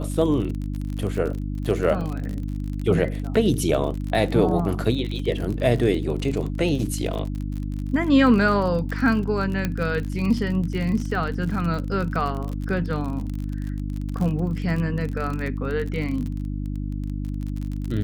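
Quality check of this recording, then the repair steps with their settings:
crackle 37 per s -28 dBFS
hum 50 Hz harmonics 6 -28 dBFS
9.65 s: pop -11 dBFS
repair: de-click; de-hum 50 Hz, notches 6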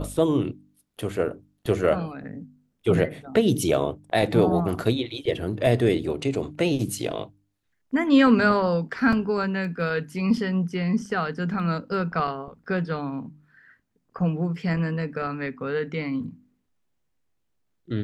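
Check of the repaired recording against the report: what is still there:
9.65 s: pop

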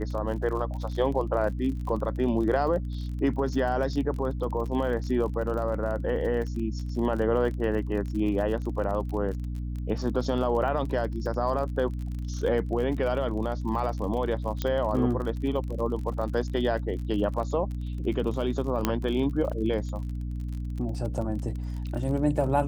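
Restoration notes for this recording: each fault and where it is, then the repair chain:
crackle 38 per s -34 dBFS
hum 60 Hz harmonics 5 -32 dBFS
14.62 s: pop -14 dBFS
18.85 s: pop -9 dBFS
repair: de-click; de-hum 60 Hz, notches 5

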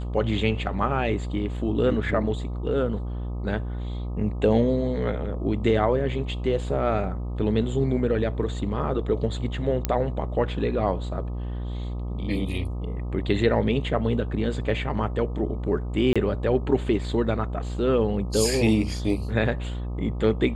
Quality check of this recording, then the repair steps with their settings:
buzz 60 Hz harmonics 21 -30 dBFS
9.85 s: pop -8 dBFS
16.13–16.16 s: dropout 26 ms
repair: de-click; de-hum 60 Hz, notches 21; interpolate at 16.13 s, 26 ms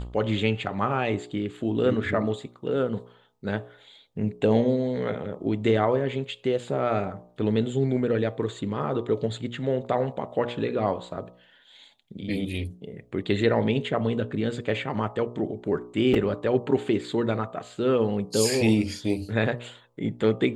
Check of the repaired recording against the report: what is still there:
nothing left

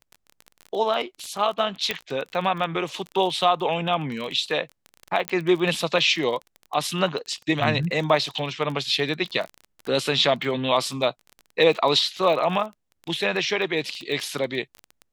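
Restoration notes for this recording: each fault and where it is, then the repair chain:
crackle 24 per s -29 dBFS
1.91 s: pop -9 dBFS
5.28 s: pop -9 dBFS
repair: de-click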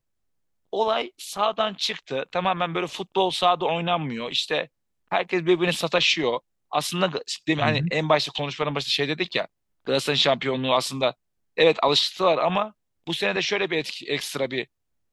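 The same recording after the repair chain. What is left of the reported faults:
nothing left

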